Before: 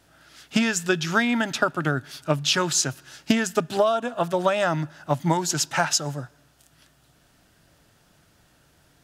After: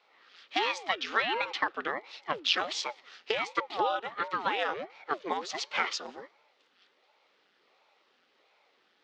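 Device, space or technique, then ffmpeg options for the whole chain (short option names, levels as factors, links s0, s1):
voice changer toy: -af "aeval=exprs='val(0)*sin(2*PI*420*n/s+420*0.8/1.4*sin(2*PI*1.4*n/s))':c=same,highpass=580,equalizer=f=660:t=q:w=4:g=-6,equalizer=f=1000:t=q:w=4:g=-5,equalizer=f=1600:t=q:w=4:g=-4,lowpass=f=4200:w=0.5412,lowpass=f=4200:w=1.3066"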